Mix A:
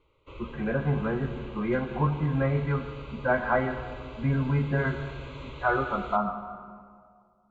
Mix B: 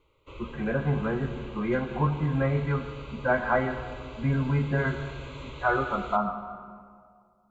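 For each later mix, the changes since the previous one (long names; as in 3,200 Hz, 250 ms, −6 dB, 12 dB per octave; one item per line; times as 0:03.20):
master: remove high-frequency loss of the air 78 metres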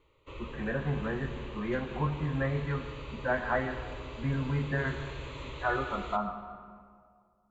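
speech −5.5 dB
master: remove Butterworth band-reject 1,800 Hz, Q 6.7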